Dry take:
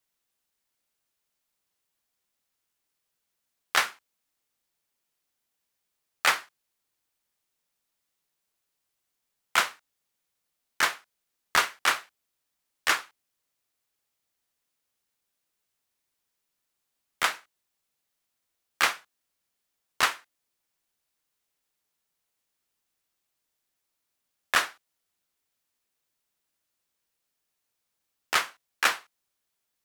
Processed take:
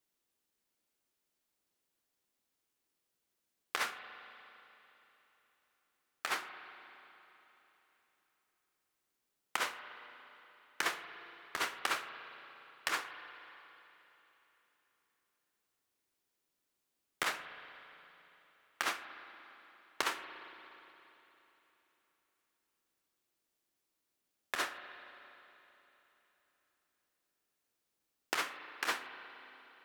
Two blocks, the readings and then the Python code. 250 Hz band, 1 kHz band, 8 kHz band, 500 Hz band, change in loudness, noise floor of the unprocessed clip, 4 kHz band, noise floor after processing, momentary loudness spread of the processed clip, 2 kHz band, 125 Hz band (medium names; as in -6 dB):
-4.0 dB, -10.0 dB, -11.0 dB, -6.5 dB, -12.0 dB, -82 dBFS, -10.5 dB, -85 dBFS, 20 LU, -10.5 dB, -10.0 dB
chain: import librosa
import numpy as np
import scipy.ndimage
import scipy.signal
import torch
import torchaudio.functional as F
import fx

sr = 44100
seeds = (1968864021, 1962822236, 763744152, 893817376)

y = fx.peak_eq(x, sr, hz=330.0, db=7.5, octaves=1.2)
y = fx.over_compress(y, sr, threshold_db=-25.0, ratio=-0.5)
y = fx.rev_spring(y, sr, rt60_s=3.5, pass_ms=(35, 58), chirp_ms=25, drr_db=9.0)
y = y * 10.0 ** (-7.5 / 20.0)